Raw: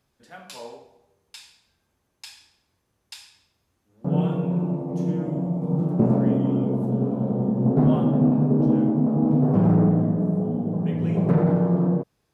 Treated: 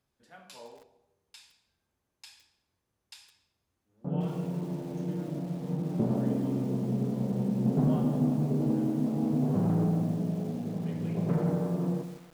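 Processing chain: 6.69–8.05 bell 180 Hz +10 dB 0.24 oct; lo-fi delay 0.162 s, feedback 35%, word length 6-bit, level -10 dB; gain -9 dB

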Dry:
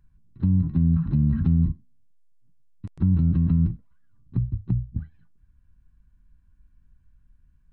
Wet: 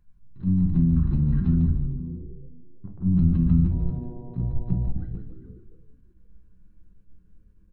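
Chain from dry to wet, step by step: reverse delay 0.308 s, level -13 dB; 1.71–3.16 LPF 1200 Hz -> 1300 Hz 24 dB/oct; 3.7–4.88 buzz 120 Hz, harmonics 8, -43 dBFS -5 dB/oct; frequency-shifting echo 0.15 s, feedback 46%, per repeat -110 Hz, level -8.5 dB; shoebox room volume 180 m³, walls furnished, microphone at 0.92 m; attack slew limiter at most 280 dB/s; gain -2.5 dB

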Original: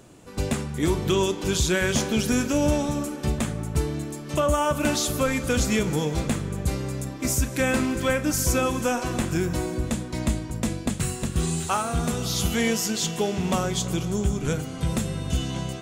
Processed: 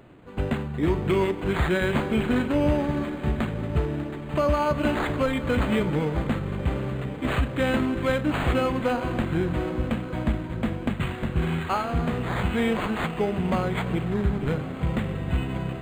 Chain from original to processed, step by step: on a send: diffused feedback echo 1.222 s, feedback 42%, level -14 dB; on the sum: decimation joined by straight lines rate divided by 8×

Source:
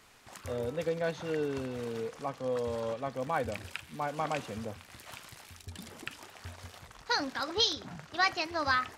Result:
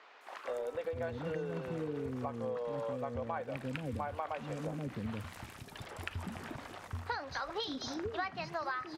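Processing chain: high shelf 2800 Hz -12 dB; three bands offset in time mids, highs, lows 0.21/0.48 s, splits 400/5200 Hz; compressor 6:1, threshold -42 dBFS, peak gain reduction 16 dB; gain +7 dB

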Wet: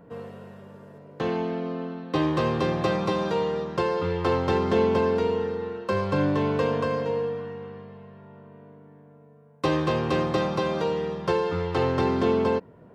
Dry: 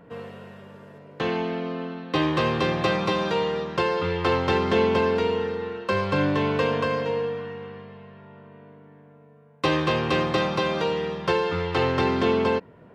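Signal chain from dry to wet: bell 2600 Hz -7.5 dB 1.9 oct

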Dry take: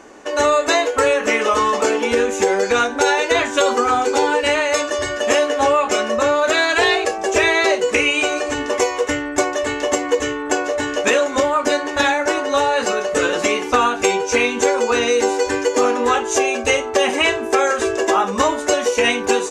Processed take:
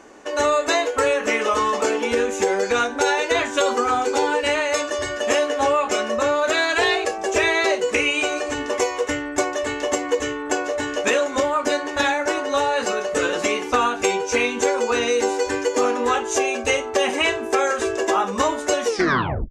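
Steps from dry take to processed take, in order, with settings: tape stop at the end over 0.64 s; gain -3.5 dB

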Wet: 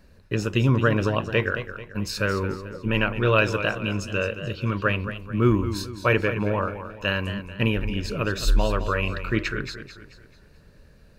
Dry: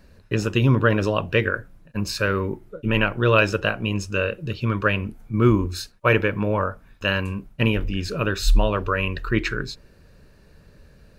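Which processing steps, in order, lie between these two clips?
warbling echo 0.218 s, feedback 42%, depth 97 cents, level -11 dB; gain -2.5 dB

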